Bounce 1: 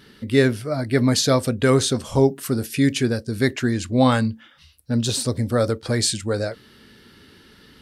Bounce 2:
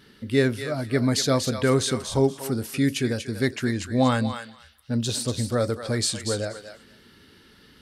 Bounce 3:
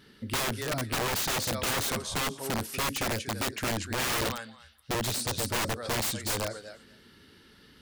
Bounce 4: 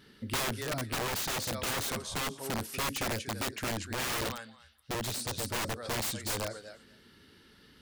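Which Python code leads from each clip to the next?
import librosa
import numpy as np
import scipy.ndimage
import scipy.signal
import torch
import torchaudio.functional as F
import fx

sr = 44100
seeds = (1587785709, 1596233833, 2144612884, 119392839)

y1 = fx.echo_thinned(x, sr, ms=239, feedback_pct=17, hz=1000.0, wet_db=-6.5)
y1 = y1 * 10.0 ** (-4.0 / 20.0)
y2 = (np.mod(10.0 ** (21.0 / 20.0) * y1 + 1.0, 2.0) - 1.0) / 10.0 ** (21.0 / 20.0)
y2 = y2 * 10.0 ** (-3.0 / 20.0)
y3 = fx.rider(y2, sr, range_db=10, speed_s=2.0)
y3 = y3 * 10.0 ** (-3.5 / 20.0)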